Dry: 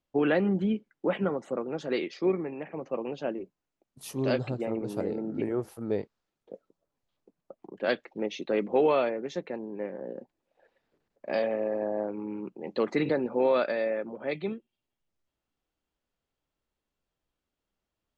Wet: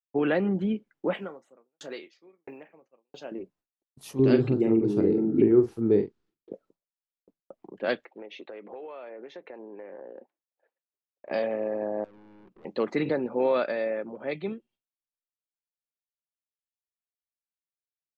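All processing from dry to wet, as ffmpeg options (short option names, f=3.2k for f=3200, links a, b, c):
-filter_complex "[0:a]asettb=1/sr,asplit=3[a][b][c];[a]atrim=end=1.144[d];[b]atrim=start=1.14:end=3.32,asetpts=PTS-STARTPTS,afade=t=in:d=0.004:c=qsin,afade=t=out:st=2.176:d=0.004:c=qsin,aemphasis=mode=production:type=bsi,asplit=2[e][f];[f]adelay=30,volume=-13dB[g];[e][g]amix=inputs=2:normalize=0,atrim=end_sample=96138,aeval=exprs='val(0)*pow(10,-39*if(lt(mod(1.5*n/s,1),2*abs(1.5)/1000),1-mod(1.5*n/s,1)/(2*abs(1.5)/1000),(mod(1.5*n/s,1)-2*abs(1.5)/1000)/(1-2*abs(1.5)/1000))/20)':c=same[h];[c]atrim=start=3.316[i];[d][h]acrossfade=d=0.004:c1=hsin:c2=qsin[j];[j][i]acrossfade=d=0.004:c1=qsin:c2=hsin,asettb=1/sr,asplit=3[k][l][m];[k]atrim=end=4.194[n];[l]atrim=start=4.19:end=6.53,asetpts=PTS-STARTPTS,afade=t=in:d=0.004:c=qsin,afade=t=out:st=2.336:d=0.004:c=qsin,lowpass=7.9k,lowshelf=f=470:t=q:w=3:g=6.5,asplit=2[o][p];[p]adelay=44,volume=-9.5dB[q];[o][q]amix=inputs=2:normalize=0,atrim=end_sample=103194[r];[m]atrim=start=6.526[s];[n][r]acrossfade=d=0.004:c1=hsin:c2=qsin[t];[t][s]acrossfade=d=0.004:c1=qsin:c2=hsin,asettb=1/sr,asplit=3[u][v][w];[u]atrim=end=8.054[x];[v]atrim=start=8.05:end=11.31,asetpts=PTS-STARTPTS,afade=t=in:d=0.004:c=qsin,afade=t=out:st=3.256:d=0.004:c=qsin,highpass=400,lowpass=2.9k,acompressor=threshold=-37dB:ratio=16:attack=3.2:release=140:knee=1:detection=peak[y];[w]atrim=start=11.306[z];[x][y]acrossfade=d=0.004:c1=hsin:c2=qsin[aa];[aa][z]acrossfade=d=0.004:c1=qsin:c2=hsin,asettb=1/sr,asplit=3[ab][ac][ad];[ab]atrim=end=12.044[ae];[ac]atrim=start=12.04:end=12.65,asetpts=PTS-STARTPTS,afade=t=in:d=0.004:c=qsin,afade=t=out:st=0.606:d=0.004:c=qsin,acompressor=threshold=-40dB:ratio=5:attack=3.2:release=140:knee=1:detection=peak,aeval=exprs='(tanh(355*val(0)+0.4)-tanh(0.4))/355':c=same[af];[ad]atrim=start=12.646[ag];[ae][af]acrossfade=d=0.004:c1=hsin:c2=qsin[ah];[ah][ag]acrossfade=d=0.004:c1=qsin:c2=hsin,agate=range=-33dB:threshold=-57dB:ratio=3:detection=peak,highshelf=f=6.4k:g=-5.5"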